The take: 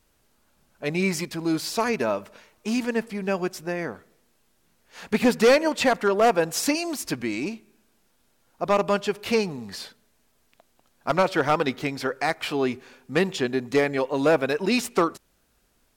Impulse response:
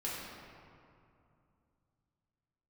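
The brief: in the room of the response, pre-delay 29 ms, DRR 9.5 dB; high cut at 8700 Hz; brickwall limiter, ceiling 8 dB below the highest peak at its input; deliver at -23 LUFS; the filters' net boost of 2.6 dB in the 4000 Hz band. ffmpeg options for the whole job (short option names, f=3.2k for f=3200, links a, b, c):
-filter_complex "[0:a]lowpass=8.7k,equalizer=f=4k:t=o:g=3.5,alimiter=limit=-17.5dB:level=0:latency=1,asplit=2[a][b];[1:a]atrim=start_sample=2205,adelay=29[c];[b][c]afir=irnorm=-1:irlink=0,volume=-13dB[d];[a][d]amix=inputs=2:normalize=0,volume=4.5dB"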